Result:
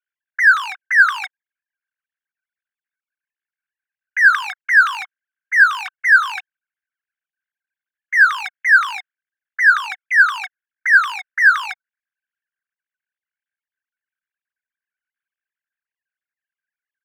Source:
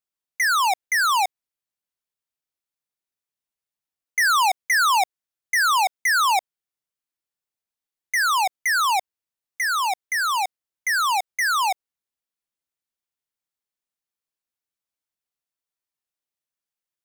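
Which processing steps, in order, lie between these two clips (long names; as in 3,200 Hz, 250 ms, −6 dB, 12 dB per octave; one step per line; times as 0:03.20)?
three sine waves on the formant tracks
mid-hump overdrive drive 35 dB, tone 2,300 Hz, clips at −6.5 dBFS
four-pole ladder high-pass 1,500 Hz, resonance 80%
level +3 dB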